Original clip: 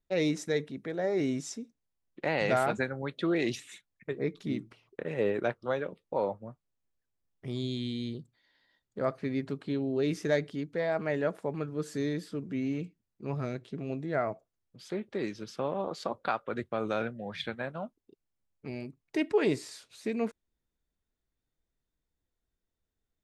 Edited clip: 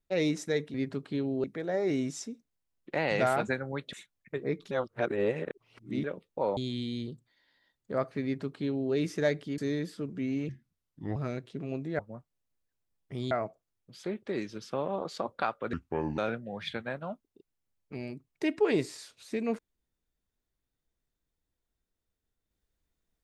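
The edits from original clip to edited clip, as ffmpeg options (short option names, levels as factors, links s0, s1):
-filter_complex "[0:a]asplit=14[s0][s1][s2][s3][s4][s5][s6][s7][s8][s9][s10][s11][s12][s13];[s0]atrim=end=0.742[s14];[s1]atrim=start=9.298:end=10.002[s15];[s2]atrim=start=0.738:end=3.232[s16];[s3]atrim=start=3.678:end=4.462[s17];[s4]atrim=start=4.458:end=5.792,asetpts=PTS-STARTPTS,areverse[s18];[s5]atrim=start=5.788:end=6.322[s19];[s6]atrim=start=7.638:end=10.652[s20];[s7]atrim=start=11.918:end=12.834[s21];[s8]atrim=start=12.83:end=13.34,asetpts=PTS-STARTPTS,asetrate=33516,aresample=44100,atrim=end_sample=29593,asetpts=PTS-STARTPTS[s22];[s9]atrim=start=13.336:end=14.172[s23];[s10]atrim=start=6.318:end=7.642[s24];[s11]atrim=start=14.168:end=16.594[s25];[s12]atrim=start=16.59:end=16.91,asetpts=PTS-STARTPTS,asetrate=31311,aresample=44100,atrim=end_sample=19876,asetpts=PTS-STARTPTS[s26];[s13]atrim=start=16.906[s27];[s14][s15]acrossfade=d=0.004:c1=hsin:c2=hsin[s28];[s28][s16]acrossfade=d=0.004:c1=hsin:c2=hsin[s29];[s29][s17]acrossfade=d=0.004:c1=hsin:c2=hsin[s30];[s30][s18]acrossfade=d=0.004:c1=hsin:c2=hsin[s31];[s31][s19]acrossfade=d=0.004:c1=hsin:c2=hsin[s32];[s32][s20]acrossfade=d=0.004:c1=hsin:c2=hsin[s33];[s33][s21]acrossfade=d=0.004:c1=hsin:c2=hsin[s34];[s34][s22]acrossfade=d=0.004:c1=hsin:c2=hsin[s35];[s35][s23]acrossfade=d=0.004:c1=hsin:c2=hsin[s36];[s36][s24]acrossfade=d=0.004:c1=hsin:c2=hsin[s37];[s37][s25]acrossfade=d=0.004:c1=hsin:c2=hsin[s38];[s38][s26]acrossfade=d=0.004:c1=hsin:c2=hsin[s39];[s39][s27]acrossfade=d=0.004:c1=hsin:c2=hsin"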